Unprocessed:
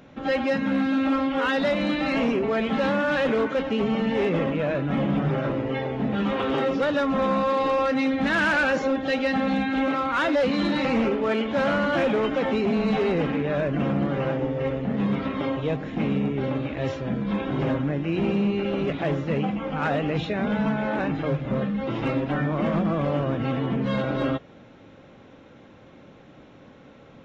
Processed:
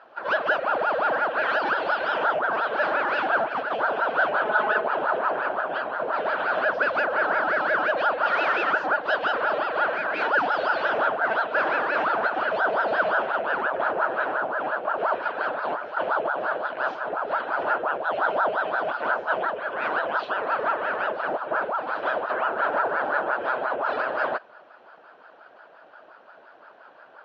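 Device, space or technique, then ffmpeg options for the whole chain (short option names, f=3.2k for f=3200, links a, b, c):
voice changer toy: -filter_complex "[0:a]aeval=exprs='val(0)*sin(2*PI*690*n/s+690*0.7/5.7*sin(2*PI*5.7*n/s))':c=same,highpass=420,equalizer=f=630:t=q:w=4:g=7,equalizer=f=1.5k:t=q:w=4:g=10,equalizer=f=2.1k:t=q:w=4:g=-8,equalizer=f=3.6k:t=q:w=4:g=-8,lowpass=f=4.6k:w=0.5412,lowpass=f=4.6k:w=1.3066,asettb=1/sr,asplit=3[a][b][c];[a]atrim=end=4.454[d];[b]atrim=start=4.45:end=4.88,asetpts=PTS-STARTPTS,afade=t=in:d=0.004:c=qsin,afade=t=out:st=0.426:d=0.004:c=qsin,aecho=1:1:4.7:1,atrim=end_sample=18963[e];[c]atrim=start=4.876[f];[d][e]acrossfade=d=0.004:c1=hsin:c2=qsin[g];[g][f]acrossfade=d=0.004:c1=qsin:c2=hsin,equalizer=f=3.4k:t=o:w=0.33:g=3"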